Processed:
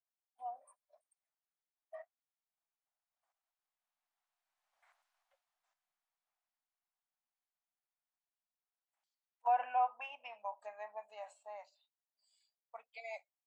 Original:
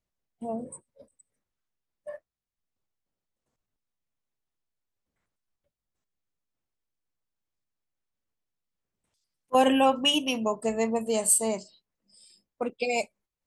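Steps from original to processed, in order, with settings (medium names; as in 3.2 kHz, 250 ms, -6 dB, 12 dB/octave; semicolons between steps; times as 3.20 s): Doppler pass-by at 5.00 s, 23 m/s, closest 7.1 m; low-pass that closes with the level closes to 1.6 kHz, closed at -46.5 dBFS; elliptic high-pass 710 Hz, stop band 50 dB; tilt EQ -3.5 dB/octave; trim +15.5 dB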